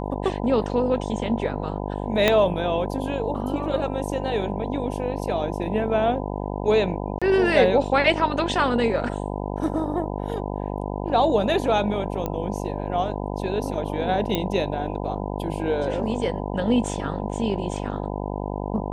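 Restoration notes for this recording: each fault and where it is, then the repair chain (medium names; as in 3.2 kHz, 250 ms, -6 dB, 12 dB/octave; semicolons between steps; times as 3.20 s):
buzz 50 Hz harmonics 20 -29 dBFS
2.28 s: pop -4 dBFS
7.19–7.22 s: dropout 26 ms
12.26 s: pop -14 dBFS
14.35 s: pop -9 dBFS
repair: de-click; de-hum 50 Hz, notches 20; interpolate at 7.19 s, 26 ms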